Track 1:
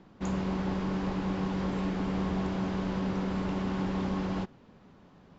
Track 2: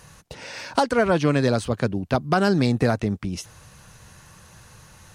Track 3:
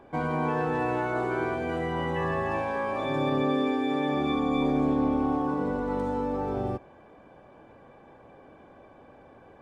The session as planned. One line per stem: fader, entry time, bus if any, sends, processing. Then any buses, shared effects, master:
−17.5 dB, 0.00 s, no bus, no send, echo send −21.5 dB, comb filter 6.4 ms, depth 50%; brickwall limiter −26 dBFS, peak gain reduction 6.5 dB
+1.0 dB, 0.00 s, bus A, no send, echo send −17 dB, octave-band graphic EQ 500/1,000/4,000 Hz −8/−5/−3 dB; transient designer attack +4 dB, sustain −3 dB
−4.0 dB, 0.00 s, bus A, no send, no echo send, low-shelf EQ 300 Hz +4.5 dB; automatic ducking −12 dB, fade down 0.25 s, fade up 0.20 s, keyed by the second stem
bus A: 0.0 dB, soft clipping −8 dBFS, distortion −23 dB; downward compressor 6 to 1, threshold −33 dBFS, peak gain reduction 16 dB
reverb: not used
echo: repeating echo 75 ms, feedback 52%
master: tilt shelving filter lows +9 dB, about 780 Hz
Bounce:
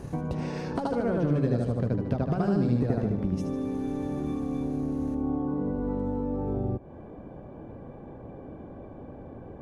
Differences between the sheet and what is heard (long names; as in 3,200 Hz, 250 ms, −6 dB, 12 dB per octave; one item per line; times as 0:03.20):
stem 2: missing octave-band graphic EQ 500/1,000/4,000 Hz −8/−5/−3 dB
stem 3 −4.0 dB → +2.5 dB